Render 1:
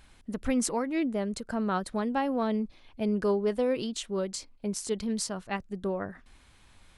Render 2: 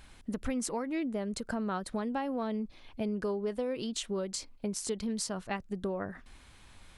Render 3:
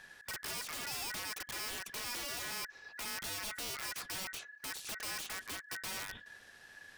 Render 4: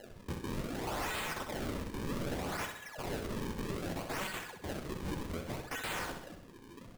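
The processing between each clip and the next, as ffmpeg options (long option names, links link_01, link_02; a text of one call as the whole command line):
ffmpeg -i in.wav -af "acompressor=threshold=-34dB:ratio=4,volume=2.5dB" out.wav
ffmpeg -i in.wav -filter_complex "[0:a]aeval=exprs='val(0)*sin(2*PI*1700*n/s)':channel_layout=same,acrossover=split=1800|4500[link_01][link_02][link_03];[link_01]acompressor=threshold=-39dB:ratio=4[link_04];[link_02]acompressor=threshold=-40dB:ratio=4[link_05];[link_03]acompressor=threshold=-50dB:ratio=4[link_06];[link_04][link_05][link_06]amix=inputs=3:normalize=0,aeval=exprs='(mod(63.1*val(0)+1,2)-1)/63.1':channel_layout=same,volume=1dB" out.wav
ffmpeg -i in.wav -af "acrusher=samples=37:mix=1:aa=0.000001:lfo=1:lforange=59.2:lforate=0.64,flanger=delay=3.4:depth=9.1:regen=67:speed=1.4:shape=triangular,aecho=1:1:64|128|192|256|320|384:0.447|0.228|0.116|0.0593|0.0302|0.0154,volume=7dB" out.wav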